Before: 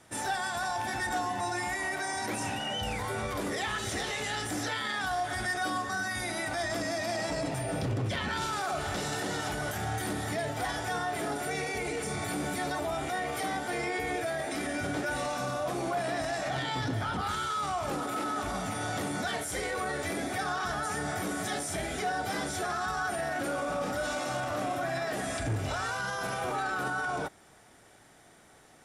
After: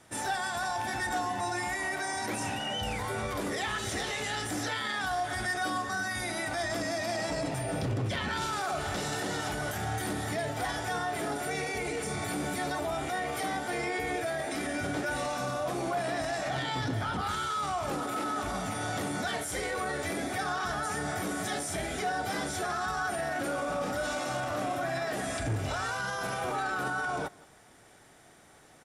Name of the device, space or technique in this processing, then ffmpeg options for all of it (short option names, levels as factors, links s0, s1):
ducked delay: -filter_complex "[0:a]asplit=3[s0][s1][s2];[s1]adelay=173,volume=0.398[s3];[s2]apad=whole_len=1279681[s4];[s3][s4]sidechaincompress=threshold=0.00224:ratio=4:attack=16:release=426[s5];[s0][s5]amix=inputs=2:normalize=0"